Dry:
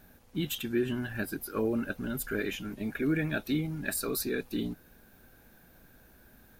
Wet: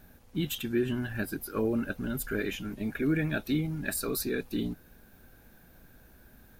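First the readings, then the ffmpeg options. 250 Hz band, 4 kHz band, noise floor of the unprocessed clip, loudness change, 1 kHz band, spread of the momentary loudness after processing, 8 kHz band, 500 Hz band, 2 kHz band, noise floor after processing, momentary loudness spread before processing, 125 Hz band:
+1.0 dB, 0.0 dB, -59 dBFS, +1.0 dB, 0.0 dB, 6 LU, 0.0 dB, +0.5 dB, 0.0 dB, -57 dBFS, 6 LU, +2.5 dB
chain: -af "lowshelf=f=150:g=4.5"

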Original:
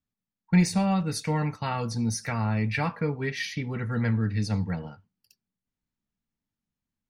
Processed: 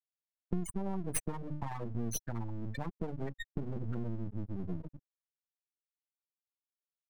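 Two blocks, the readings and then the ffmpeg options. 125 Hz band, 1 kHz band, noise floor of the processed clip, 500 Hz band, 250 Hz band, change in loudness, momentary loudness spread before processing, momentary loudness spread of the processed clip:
-12.5 dB, -13.5 dB, under -85 dBFS, -10.0 dB, -12.5 dB, -12.0 dB, 8 LU, 5 LU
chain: -filter_complex "[0:a]firequalizer=gain_entry='entry(1200,0);entry(2700,-13);entry(6300,2)':delay=0.05:min_phase=1,afwtdn=0.01,bandreject=f=50:t=h:w=6,bandreject=f=100:t=h:w=6,bandreject=f=150:t=h:w=6,acompressor=threshold=-46dB:ratio=10,aemphasis=mode=production:type=50fm,afftfilt=real='re*gte(hypot(re,im),0.0141)':imag='im*gte(hypot(re,im),0.0141)':win_size=1024:overlap=0.75,acrossover=split=310|3000[a][b][c];[b]acompressor=threshold=-53dB:ratio=3[d];[a][d][c]amix=inputs=3:normalize=0,aeval=exprs='max(val(0),0)':c=same,volume=16.5dB"

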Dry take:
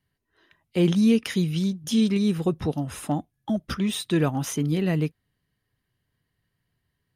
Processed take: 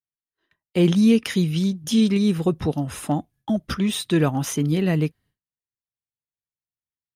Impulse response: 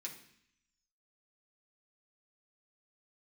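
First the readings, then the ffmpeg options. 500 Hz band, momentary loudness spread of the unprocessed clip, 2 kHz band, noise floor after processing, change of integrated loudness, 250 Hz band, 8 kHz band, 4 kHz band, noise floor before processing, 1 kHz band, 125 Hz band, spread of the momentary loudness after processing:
+3.0 dB, 9 LU, +3.0 dB, under -85 dBFS, +3.0 dB, +3.0 dB, +3.0 dB, +3.0 dB, -79 dBFS, +3.0 dB, +3.0 dB, 9 LU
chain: -af "agate=range=-33dB:threshold=-51dB:ratio=3:detection=peak,volume=3dB"

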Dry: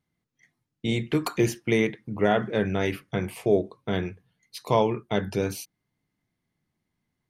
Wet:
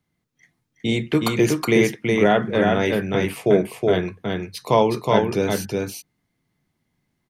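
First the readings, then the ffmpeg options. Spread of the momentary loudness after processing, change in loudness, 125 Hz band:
10 LU, +6.0 dB, +4.5 dB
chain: -filter_complex "[0:a]aecho=1:1:368:0.708,acrossover=split=110|760|5600[a][b][c][d];[a]acompressor=threshold=-45dB:ratio=6[e];[e][b][c][d]amix=inputs=4:normalize=0,volume=5dB"

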